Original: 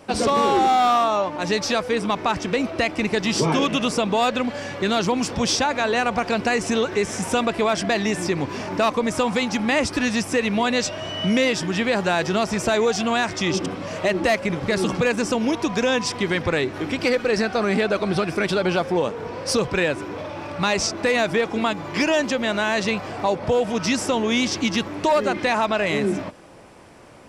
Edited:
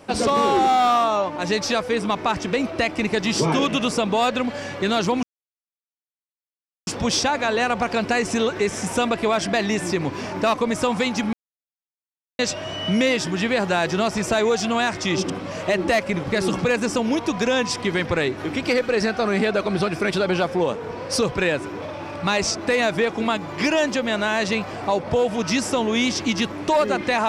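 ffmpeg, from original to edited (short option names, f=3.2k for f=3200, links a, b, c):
-filter_complex "[0:a]asplit=4[a][b][c][d];[a]atrim=end=5.23,asetpts=PTS-STARTPTS,afade=t=out:st=5.226:d=0.004:c=hsin,apad=pad_dur=1.64[e];[b]atrim=start=5.23:end=9.69,asetpts=PTS-STARTPTS,afade=t=in:d=0.004:c=hsin,afade=t=out:st=4.456:d=0.004:c=hsin[f];[c]atrim=start=9.69:end=10.75,asetpts=PTS-STARTPTS,volume=0[g];[d]atrim=start=10.75,asetpts=PTS-STARTPTS,afade=t=in:d=0.004:c=hsin[h];[e][f][g][h]concat=n=4:v=0:a=1"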